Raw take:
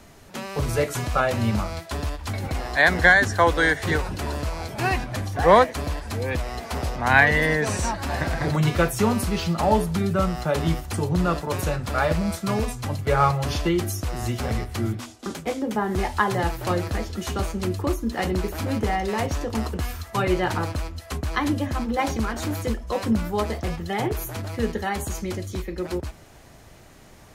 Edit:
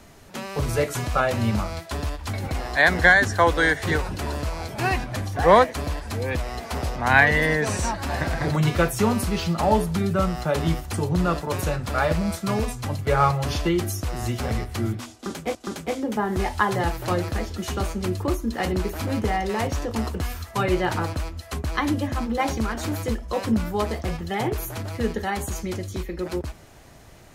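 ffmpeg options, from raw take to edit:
-filter_complex "[0:a]asplit=2[a][b];[a]atrim=end=15.552[c];[b]atrim=start=15.138[d];[c][d]acrossfade=d=0.004:c1=hsin:c2=hsin"

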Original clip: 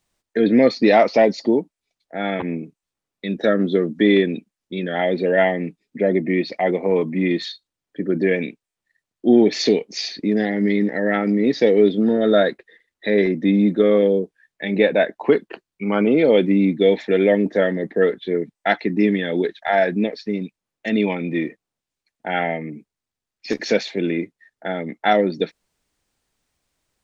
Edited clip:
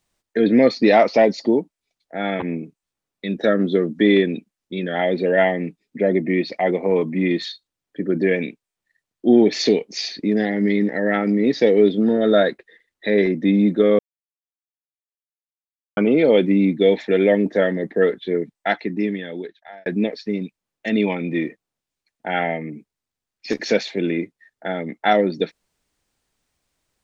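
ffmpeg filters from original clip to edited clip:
-filter_complex "[0:a]asplit=4[a][b][c][d];[a]atrim=end=13.99,asetpts=PTS-STARTPTS,afade=t=out:st=13.986:d=0.004:c=hsin[e];[b]atrim=start=13.99:end=15.97,asetpts=PTS-STARTPTS,volume=0[f];[c]atrim=start=15.97:end=19.86,asetpts=PTS-STARTPTS,afade=t=in:d=0.004:c=hsin,afade=t=out:st=2.42:d=1.47[g];[d]atrim=start=19.86,asetpts=PTS-STARTPTS,afade=t=in:d=0.004:c=hsin[h];[e][f][g][h]concat=n=4:v=0:a=1"

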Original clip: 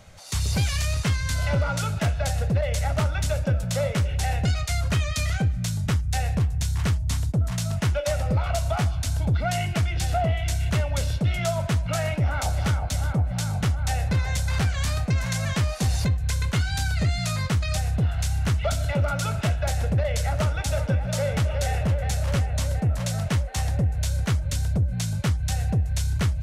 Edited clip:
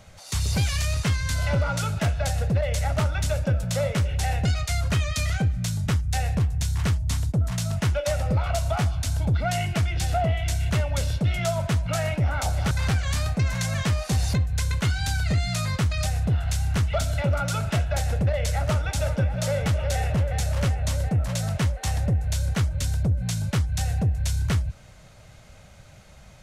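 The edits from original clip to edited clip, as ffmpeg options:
-filter_complex "[0:a]asplit=2[a][b];[a]atrim=end=12.712[c];[b]atrim=start=14.418[d];[c][d]acrossfade=d=0.004:c1=hsin:c2=hsin"

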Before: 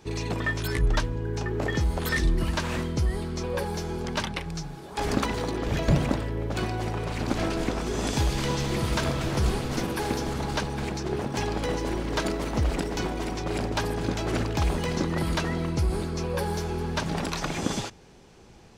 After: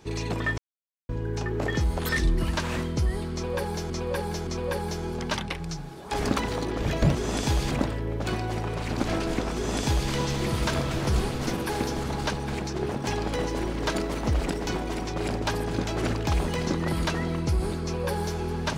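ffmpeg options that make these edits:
-filter_complex "[0:a]asplit=7[a][b][c][d][e][f][g];[a]atrim=end=0.58,asetpts=PTS-STARTPTS,afade=t=out:st=0.576:d=0.004:c=hsin[h];[b]atrim=start=0.58:end=1.09,asetpts=PTS-STARTPTS,volume=0[i];[c]atrim=start=1.09:end=3.902,asetpts=PTS-STARTPTS,afade=t=in:d=0.004:c=hsin[j];[d]atrim=start=3.328:end=3.902[k];[e]atrim=start=3.328:end=6.012[l];[f]atrim=start=7.848:end=8.412[m];[g]atrim=start=6.008[n];[h][i][j]concat=n=3:v=0:a=1[o];[o][k]acrossfade=d=0.004:c1=hsin:c2=hsin[p];[p][l]acrossfade=d=0.004:c1=hsin:c2=hsin[q];[q][m]acrossfade=d=0.004:c1=hsin:c2=hsin[r];[r][n]acrossfade=d=0.004:c1=hsin:c2=hsin"

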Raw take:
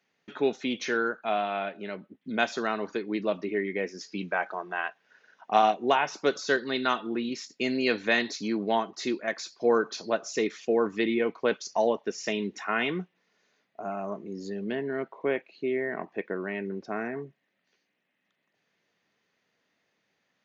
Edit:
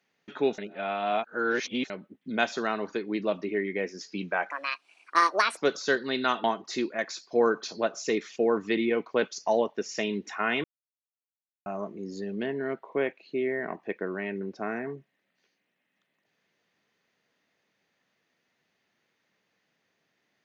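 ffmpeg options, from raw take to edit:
-filter_complex "[0:a]asplit=8[a][b][c][d][e][f][g][h];[a]atrim=end=0.582[i];[b]atrim=start=0.578:end=1.902,asetpts=PTS-STARTPTS,areverse[j];[c]atrim=start=1.898:end=4.504[k];[d]atrim=start=4.5:end=6.18,asetpts=PTS-STARTPTS,asetrate=69237,aresample=44100[l];[e]atrim=start=6.176:end=7.052[m];[f]atrim=start=8.728:end=12.93,asetpts=PTS-STARTPTS,afade=t=out:st=4.198:d=0.004:c=hsin[n];[g]atrim=start=12.93:end=13.95,asetpts=PTS-STARTPTS,volume=0[o];[h]atrim=start=13.95,asetpts=PTS-STARTPTS,afade=t=in:d=0.004:c=hsin[p];[i][j]acrossfade=d=0.004:c1=hsin:c2=hsin[q];[q][k]acrossfade=d=0.004:c1=hsin:c2=hsin[r];[r][l]acrossfade=d=0.004:c1=hsin:c2=hsin[s];[s][m]acrossfade=d=0.004:c1=hsin:c2=hsin[t];[n][o][p]concat=n=3:v=0:a=1[u];[t][u]acrossfade=d=0.004:c1=hsin:c2=hsin"

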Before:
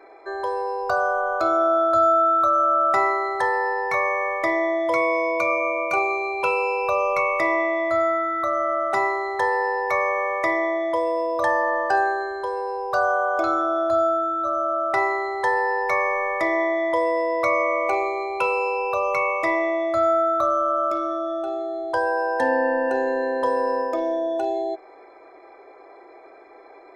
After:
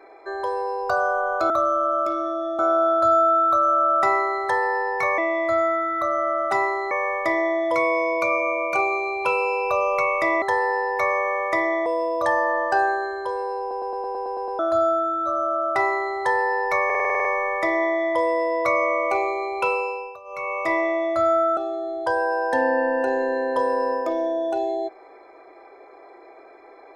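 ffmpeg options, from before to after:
-filter_complex "[0:a]asplit=27[a][b][c][d][e][f][g][h][i][j][k][l][m][n][o][p][q][r][s][t][u][v][w][x][y][z][aa];[a]atrim=end=1.502[ab];[b]atrim=start=20.348:end=21.442[ac];[c]atrim=start=1.498:end=4.092[ad];[d]atrim=start=7.598:end=9.332[ae];[e]atrim=start=4.088:end=7.602[af];[f]atrim=start=9.328:end=10.772[ag];[g]atrim=start=11.038:end=12.892[ah];[h]atrim=start=12.778:end=12.892[ai];[i]atrim=start=12.778:end=12.892[aj];[j]atrim=start=12.778:end=12.892[ak];[k]atrim=start=12.778:end=12.892[al];[l]atrim=start=12.778:end=12.892[am];[m]atrim=start=12.778:end=12.892[an];[n]atrim=start=12.778:end=12.892[ao];[o]atrim=start=12.778:end=12.892[ap];[p]atrim=start=13.768:end=16.082[aq];[q]atrim=start=16.028:end=16.082[ar];[r]atrim=start=16.028:end=16.082[as];[s]atrim=start=16.028:end=16.082[at];[t]atrim=start=16.028:end=16.082[au];[u]atrim=start=16.028:end=16.082[av];[v]atrim=start=16.028:end=16.082[aw];[w]atrim=start=16.028:end=16.082[ax];[x]atrim=start=16.028:end=18.97,asetpts=PTS-STARTPTS,afade=t=out:st=2.452:d=0.49:silence=0.0891251[ay];[y]atrim=start=18.97:end=19.02,asetpts=PTS-STARTPTS,volume=-21dB[az];[z]atrim=start=19.02:end=20.352,asetpts=PTS-STARTPTS,afade=t=in:d=0.49:silence=0.0891251[ba];[aa]atrim=start=21.438[bb];[ab][ac]acrossfade=d=0.004:c1=hsin:c2=hsin[bc];[bc][ad]acrossfade=d=0.004:c1=hsin:c2=hsin[bd];[bd][ae]acrossfade=d=0.004:c1=hsin:c2=hsin[be];[be][af]acrossfade=d=0.004:c1=hsin:c2=hsin[bf];[bf][ag]acrossfade=d=0.004:c1=hsin:c2=hsin[bg];[bg][ah]acrossfade=d=0.004:c1=hsin:c2=hsin[bh];[bh][ai]acrossfade=d=0.004:c1=hsin:c2=hsin[bi];[bi][aj]acrossfade=d=0.004:c1=hsin:c2=hsin[bj];[bj][ak]acrossfade=d=0.004:c1=hsin:c2=hsin[bk];[bk][al]acrossfade=d=0.004:c1=hsin:c2=hsin[bl];[bl][am]acrossfade=d=0.004:c1=hsin:c2=hsin[bm];[bm][an]acrossfade=d=0.004:c1=hsin:c2=hsin[bn];[bn][ao]acrossfade=d=0.004:c1=hsin:c2=hsin[bo];[bo][ap]acrossfade=d=0.004:c1=hsin:c2=hsin[bp];[bp][aq]acrossfade=d=0.004:c1=hsin:c2=hsin[bq];[bq][ar]acrossfade=d=0.004:c1=hsin:c2=hsin[br];[br][as]acrossfade=d=0.004:c1=hsin:c2=hsin[bs];[bs][at]acrossfade=d=0.004:c1=hsin:c2=hsin[bt];[bt][au]acrossfade=d=0.004:c1=hsin:c2=hsin[bu];[bu][av]acrossfade=d=0.004:c1=hsin:c2=hsin[bv];[bv][aw]acrossfade=d=0.004:c1=hsin:c2=hsin[bw];[bw][ax]acrossfade=d=0.004:c1=hsin:c2=hsin[bx];[ay][az][ba]concat=n=3:v=0:a=1[by];[bx][by]acrossfade=d=0.004:c1=hsin:c2=hsin[bz];[bz][bb]acrossfade=d=0.004:c1=hsin:c2=hsin"

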